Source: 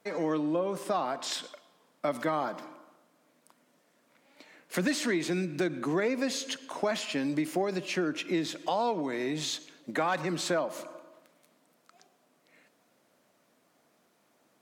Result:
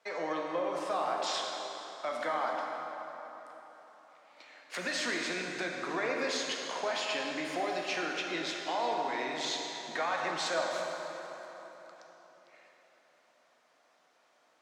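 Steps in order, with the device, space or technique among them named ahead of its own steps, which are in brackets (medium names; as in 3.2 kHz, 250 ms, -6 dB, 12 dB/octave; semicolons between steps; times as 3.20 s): DJ mixer with the lows and highs turned down (three-band isolator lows -17 dB, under 520 Hz, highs -19 dB, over 7.2 kHz; peak limiter -25.5 dBFS, peak gain reduction 6 dB); 0.90–2.49 s: high-pass 150 Hz 12 dB/octave; plate-style reverb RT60 3.9 s, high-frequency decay 0.65×, DRR -0.5 dB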